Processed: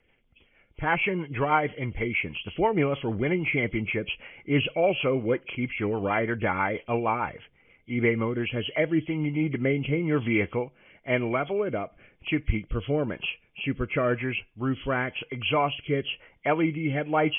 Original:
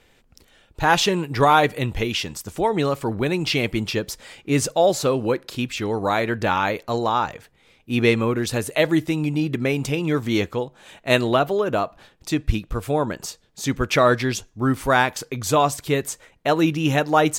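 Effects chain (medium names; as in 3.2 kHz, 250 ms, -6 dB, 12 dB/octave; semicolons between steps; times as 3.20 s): knee-point frequency compression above 2 kHz 4:1; level rider gain up to 8.5 dB; rotary cabinet horn 6.3 Hz, later 1 Hz, at 8.06 s; trim -8 dB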